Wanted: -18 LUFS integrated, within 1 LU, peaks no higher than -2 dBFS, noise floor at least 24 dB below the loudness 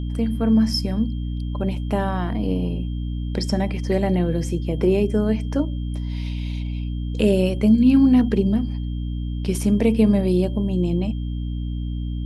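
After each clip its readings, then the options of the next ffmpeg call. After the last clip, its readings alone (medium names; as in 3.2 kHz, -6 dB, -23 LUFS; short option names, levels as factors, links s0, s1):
hum 60 Hz; highest harmonic 300 Hz; hum level -24 dBFS; steady tone 3.2 kHz; tone level -49 dBFS; loudness -22.0 LUFS; peak level -5.5 dBFS; loudness target -18.0 LUFS
-> -af "bandreject=f=60:t=h:w=6,bandreject=f=120:t=h:w=6,bandreject=f=180:t=h:w=6,bandreject=f=240:t=h:w=6,bandreject=f=300:t=h:w=6"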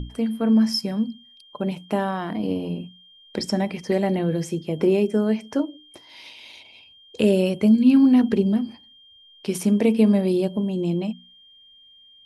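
hum not found; steady tone 3.2 kHz; tone level -49 dBFS
-> -af "bandreject=f=3200:w=30"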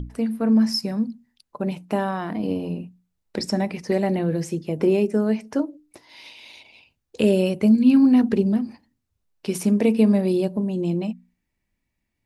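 steady tone not found; loudness -21.5 LUFS; peak level -6.5 dBFS; loudness target -18.0 LUFS
-> -af "volume=1.5"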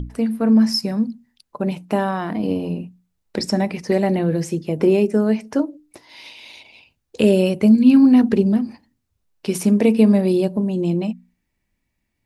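loudness -18.0 LUFS; peak level -3.0 dBFS; noise floor -75 dBFS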